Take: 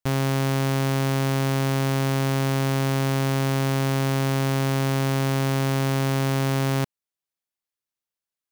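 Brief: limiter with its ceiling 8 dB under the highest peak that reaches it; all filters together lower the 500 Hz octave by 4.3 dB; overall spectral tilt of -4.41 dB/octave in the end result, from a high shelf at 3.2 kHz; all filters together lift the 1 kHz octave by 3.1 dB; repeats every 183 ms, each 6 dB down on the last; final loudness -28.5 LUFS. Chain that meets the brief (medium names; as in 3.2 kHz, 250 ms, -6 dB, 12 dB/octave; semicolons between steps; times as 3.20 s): peaking EQ 500 Hz -7.5 dB; peaking EQ 1 kHz +5.5 dB; treble shelf 3.2 kHz +4.5 dB; peak limiter -19.5 dBFS; feedback delay 183 ms, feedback 50%, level -6 dB; trim +3 dB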